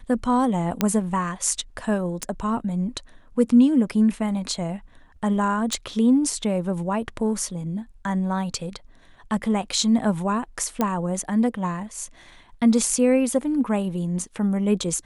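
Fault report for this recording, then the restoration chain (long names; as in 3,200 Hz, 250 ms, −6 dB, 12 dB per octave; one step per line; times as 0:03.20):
0:00.81: click −5 dBFS
0:02.23: click −12 dBFS
0:05.73: click
0:10.81: click −9 dBFS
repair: click removal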